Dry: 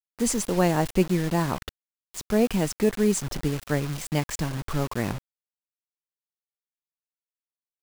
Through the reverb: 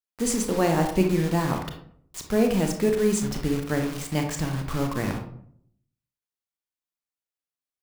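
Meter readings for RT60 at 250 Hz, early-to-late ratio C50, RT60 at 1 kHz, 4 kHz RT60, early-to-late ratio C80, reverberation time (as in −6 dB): 0.80 s, 6.0 dB, 0.60 s, 0.35 s, 10.5 dB, 0.65 s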